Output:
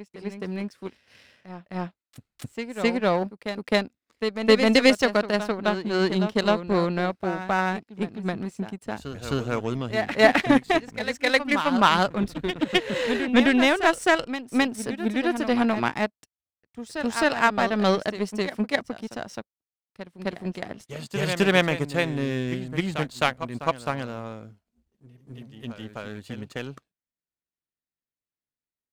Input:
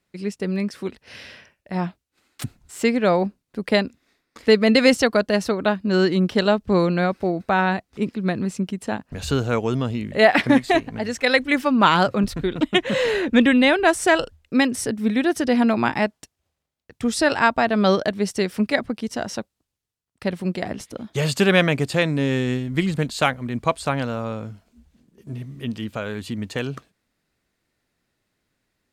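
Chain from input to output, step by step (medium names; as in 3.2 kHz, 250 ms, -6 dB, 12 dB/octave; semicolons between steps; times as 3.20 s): power-law waveshaper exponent 1.4; reverse echo 261 ms -9.5 dB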